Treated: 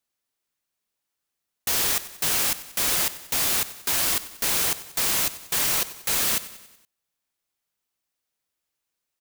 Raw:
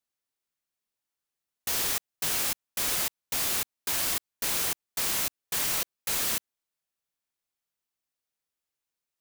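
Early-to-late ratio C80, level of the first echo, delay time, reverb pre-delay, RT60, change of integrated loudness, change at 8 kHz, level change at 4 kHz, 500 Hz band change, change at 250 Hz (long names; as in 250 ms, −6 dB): no reverb audible, −16.0 dB, 94 ms, no reverb audible, no reverb audible, +5.0 dB, +5.0 dB, +5.0 dB, +5.0 dB, +5.0 dB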